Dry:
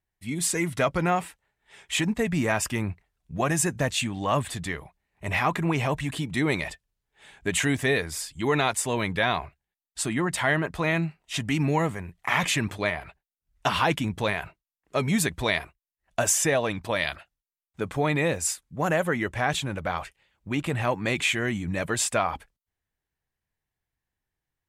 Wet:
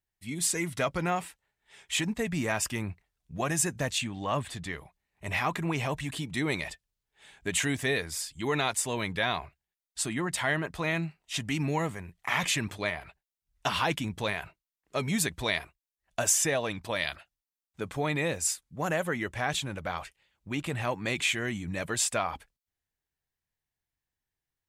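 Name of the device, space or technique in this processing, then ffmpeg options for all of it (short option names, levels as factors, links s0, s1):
presence and air boost: -filter_complex "[0:a]asettb=1/sr,asplit=3[s0][s1][s2];[s0]atrim=end=3.984[s3];[s1]atrim=start=3.98:end=4.73,asetpts=PTS-STARTPTS,afade=t=in:d=0.004:c=qsin,afade=t=out:st=0.746:d=0.004:c=qsin,highshelf=f=5700:g=-8.5[s4];[s2]atrim=start=4.726[s5];[s3][s4]acrossfade=d=0.004:c1=hsin:c2=qsin[s6];[s6][s5]acrossfade=d=0.004:c1=qsin:c2=hsin,equalizer=f=4900:t=o:w=1.9:g=4,highshelf=f=11000:g=5,volume=0.531"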